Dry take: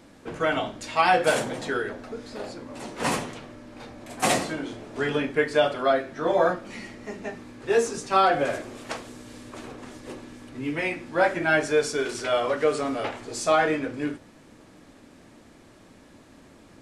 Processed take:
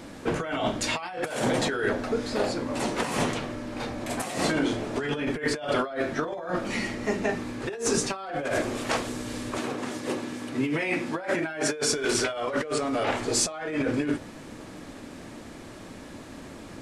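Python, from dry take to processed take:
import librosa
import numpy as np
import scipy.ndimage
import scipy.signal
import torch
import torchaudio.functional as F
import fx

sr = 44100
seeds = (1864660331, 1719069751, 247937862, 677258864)

y = fx.over_compress(x, sr, threshold_db=-32.0, ratio=-1.0)
y = fx.highpass(y, sr, hz=140.0, slope=12, at=(9.58, 11.89))
y = F.gain(torch.from_numpy(y), 3.5).numpy()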